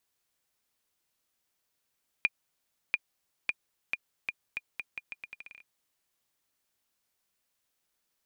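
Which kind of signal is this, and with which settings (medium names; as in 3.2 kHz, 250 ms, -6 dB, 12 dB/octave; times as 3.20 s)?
bouncing ball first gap 0.69 s, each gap 0.8, 2.42 kHz, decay 38 ms -12 dBFS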